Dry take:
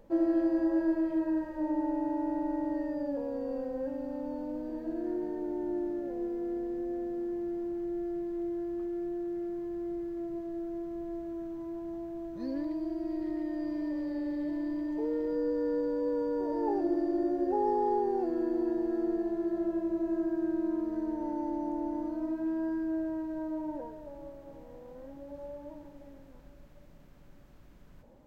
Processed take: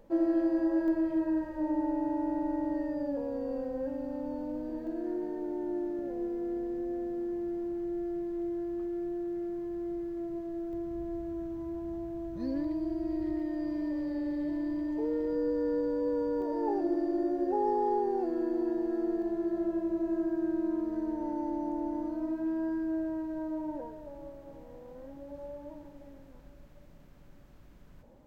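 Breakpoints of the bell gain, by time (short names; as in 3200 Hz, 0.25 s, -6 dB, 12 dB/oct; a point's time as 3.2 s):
bell 71 Hz 1.8 oct
-2.5 dB
from 0.88 s +5 dB
from 4.87 s -7 dB
from 5.99 s +2.5 dB
from 10.73 s +13 dB
from 13.4 s +6.5 dB
from 16.42 s -5.5 dB
from 19.22 s +1.5 dB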